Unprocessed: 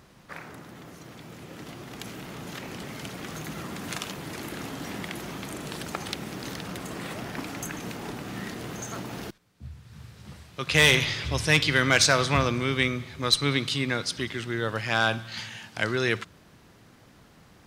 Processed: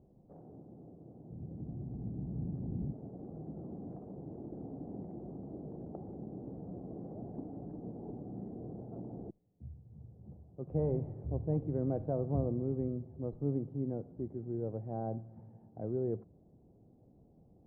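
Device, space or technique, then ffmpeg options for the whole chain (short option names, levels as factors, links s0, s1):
under water: -filter_complex "[0:a]asplit=3[s0][s1][s2];[s0]afade=t=out:st=1.3:d=0.02[s3];[s1]asubboost=boost=9:cutoff=190,afade=t=in:st=1.3:d=0.02,afade=t=out:st=2.91:d=0.02[s4];[s2]afade=t=in:st=2.91:d=0.02[s5];[s3][s4][s5]amix=inputs=3:normalize=0,lowpass=f=490:w=0.5412,lowpass=f=490:w=1.3066,equalizer=f=760:t=o:w=0.52:g=10.5,volume=0.473"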